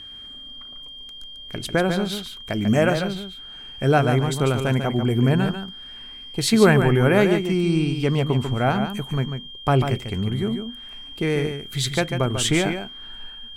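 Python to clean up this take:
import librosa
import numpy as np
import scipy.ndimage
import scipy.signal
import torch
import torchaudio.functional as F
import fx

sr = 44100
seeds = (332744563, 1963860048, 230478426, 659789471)

y = fx.notch(x, sr, hz=3200.0, q=30.0)
y = fx.fix_echo_inverse(y, sr, delay_ms=144, level_db=-7.5)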